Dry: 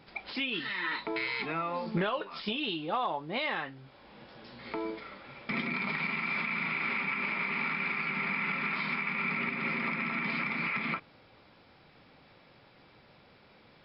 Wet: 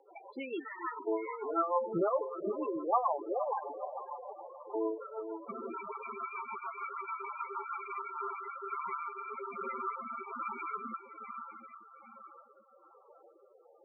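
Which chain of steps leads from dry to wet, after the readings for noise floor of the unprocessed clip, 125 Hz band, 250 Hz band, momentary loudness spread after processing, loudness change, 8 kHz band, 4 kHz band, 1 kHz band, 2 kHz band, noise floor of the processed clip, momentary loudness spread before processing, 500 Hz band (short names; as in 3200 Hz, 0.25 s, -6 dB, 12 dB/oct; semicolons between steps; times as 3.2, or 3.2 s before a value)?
-60 dBFS, under -10 dB, -5.0 dB, 14 LU, -5.5 dB, n/a, under -25 dB, +1.0 dB, -17.5 dB, -62 dBFS, 8 LU, +3.5 dB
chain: band shelf 700 Hz +14 dB 2.4 oct; diffused feedback echo 0.472 s, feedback 56%, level -7 dB; loudest bins only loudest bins 8; rotary speaker horn 6.7 Hz, later 1.2 Hz, at 7.51; gain -7 dB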